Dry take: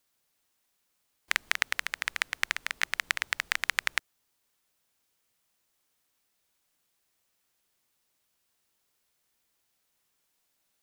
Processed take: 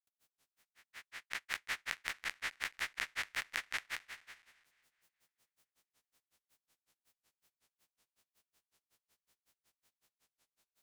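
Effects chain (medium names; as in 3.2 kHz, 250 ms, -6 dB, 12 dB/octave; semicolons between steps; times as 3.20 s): spectral blur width 565 ms; granulator 104 ms, grains 5.4 per s, pitch spread up and down by 0 st; modulated delay 215 ms, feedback 52%, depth 67 cents, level -21.5 dB; trim +6 dB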